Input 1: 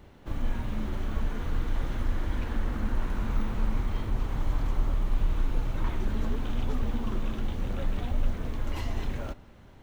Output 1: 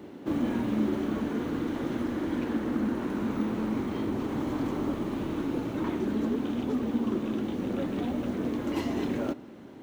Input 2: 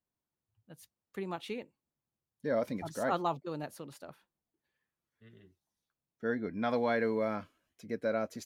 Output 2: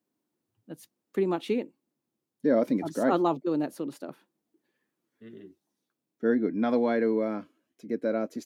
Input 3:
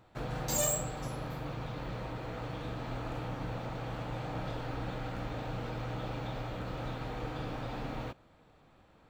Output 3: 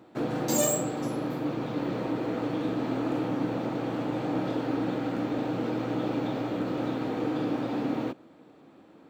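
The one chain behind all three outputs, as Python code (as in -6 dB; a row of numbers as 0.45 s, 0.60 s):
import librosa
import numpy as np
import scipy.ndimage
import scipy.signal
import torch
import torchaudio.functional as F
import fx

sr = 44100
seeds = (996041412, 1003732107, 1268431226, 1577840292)

y = scipy.signal.sosfilt(scipy.signal.butter(2, 160.0, 'highpass', fs=sr, output='sos'), x)
y = fx.peak_eq(y, sr, hz=300.0, db=13.5, octaves=1.3)
y = fx.rider(y, sr, range_db=10, speed_s=2.0)
y = y * 10.0 ** (-30 / 20.0) / np.sqrt(np.mean(np.square(y)))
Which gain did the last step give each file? 0.0 dB, 0.0 dB, +3.0 dB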